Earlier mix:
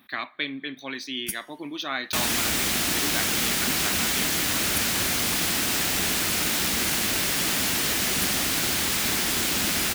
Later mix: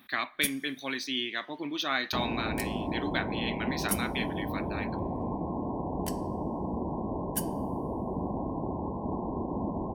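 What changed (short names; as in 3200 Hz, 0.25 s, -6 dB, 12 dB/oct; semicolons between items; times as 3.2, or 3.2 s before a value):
first sound: entry -0.85 s; second sound: add brick-wall FIR low-pass 1100 Hz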